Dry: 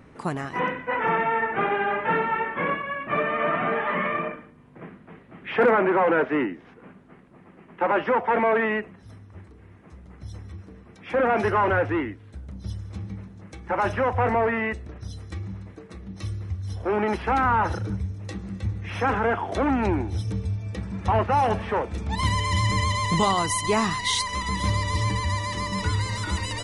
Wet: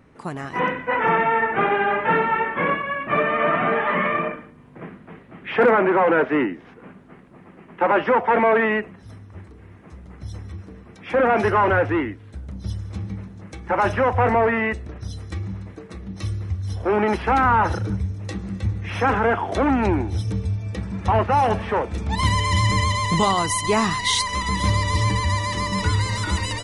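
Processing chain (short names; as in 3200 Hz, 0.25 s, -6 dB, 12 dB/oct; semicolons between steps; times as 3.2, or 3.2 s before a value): AGC gain up to 8 dB; gain -3.5 dB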